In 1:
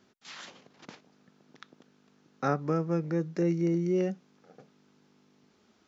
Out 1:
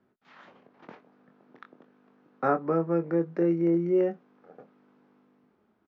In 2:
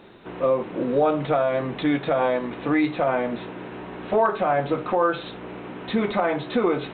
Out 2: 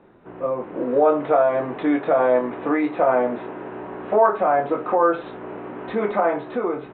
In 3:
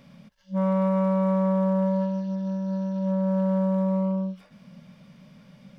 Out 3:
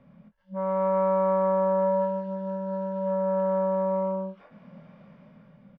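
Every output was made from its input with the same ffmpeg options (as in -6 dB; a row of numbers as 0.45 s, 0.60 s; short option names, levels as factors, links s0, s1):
-filter_complex "[0:a]lowpass=1500,acrossover=split=280[s0][s1];[s0]alimiter=level_in=2:limit=0.0631:level=0:latency=1:release=434,volume=0.501[s2];[s1]dynaudnorm=f=160:g=9:m=2.82[s3];[s2][s3]amix=inputs=2:normalize=0,asplit=2[s4][s5];[s5]adelay=24,volume=0.398[s6];[s4][s6]amix=inputs=2:normalize=0,volume=0.631"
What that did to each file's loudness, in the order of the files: +3.0 LU, +2.5 LU, -1.0 LU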